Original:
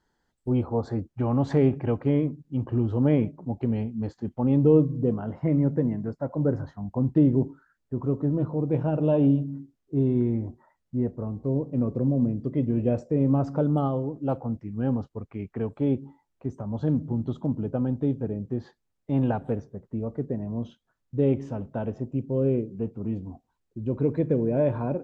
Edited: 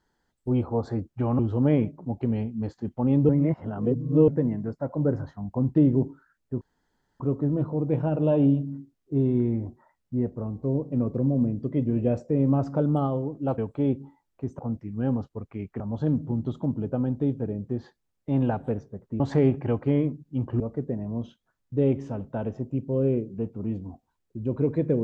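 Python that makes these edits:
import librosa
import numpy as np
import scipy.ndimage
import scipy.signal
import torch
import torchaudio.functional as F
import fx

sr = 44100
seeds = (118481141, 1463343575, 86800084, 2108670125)

y = fx.edit(x, sr, fx.move(start_s=1.39, length_s=1.4, to_s=20.01),
    fx.reverse_span(start_s=4.69, length_s=0.99),
    fx.insert_room_tone(at_s=8.01, length_s=0.59),
    fx.move(start_s=15.6, length_s=1.01, to_s=14.39), tone=tone)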